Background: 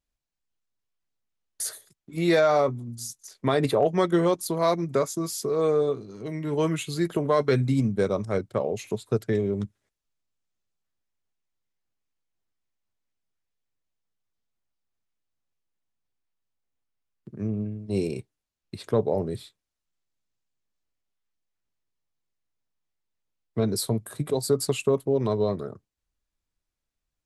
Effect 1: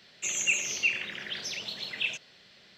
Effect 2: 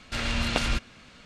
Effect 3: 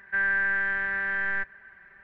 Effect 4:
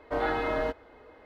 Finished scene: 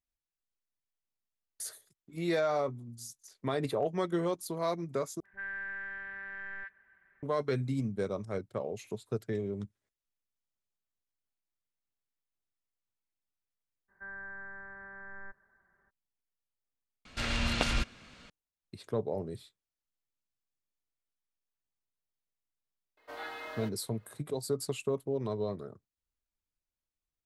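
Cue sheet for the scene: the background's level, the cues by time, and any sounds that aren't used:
background −9.5 dB
0:05.20: overwrite with 3 −14.5 dB + all-pass dispersion highs, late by 57 ms, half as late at 740 Hz
0:13.88: mix in 3 −12 dB, fades 0.02 s + low-pass filter 1,300 Hz 24 dB per octave
0:17.05: overwrite with 2 −3.5 dB
0:22.97: mix in 4 −13 dB + spectral tilt +4.5 dB per octave
not used: 1

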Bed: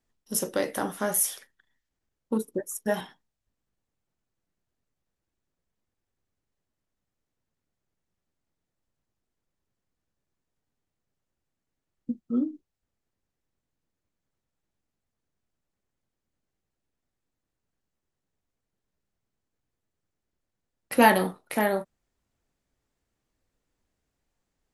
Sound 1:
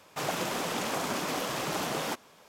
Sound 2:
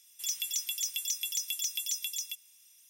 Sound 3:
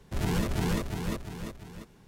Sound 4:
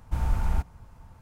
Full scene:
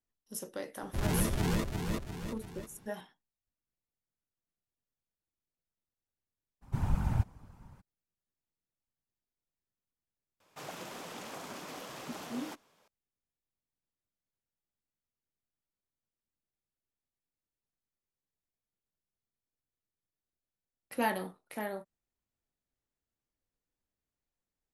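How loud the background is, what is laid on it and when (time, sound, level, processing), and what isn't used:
bed −13 dB
0:00.82: mix in 3 −2 dB
0:06.61: mix in 4 −5 dB, fades 0.02 s + random phases in short frames
0:10.40: mix in 1 −12.5 dB
not used: 2

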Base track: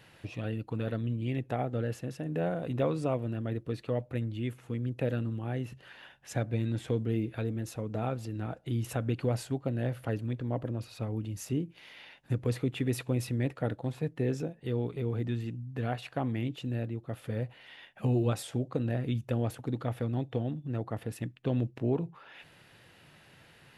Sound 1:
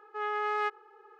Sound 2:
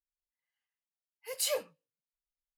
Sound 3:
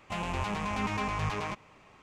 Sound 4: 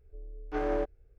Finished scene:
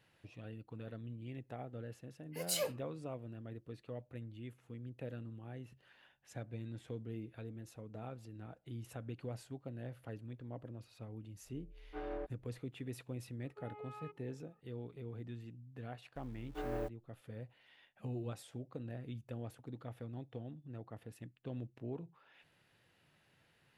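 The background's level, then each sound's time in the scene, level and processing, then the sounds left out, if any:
base track −14 dB
0:01.09: mix in 2 −4.5 dB
0:11.41: mix in 4 −12.5 dB + low-pass filter 3,100 Hz
0:13.42: mix in 1 −7 dB + formant filter swept between two vowels a-u 1.8 Hz
0:16.03: mix in 4 −10 dB + hold until the input has moved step −46.5 dBFS
not used: 3

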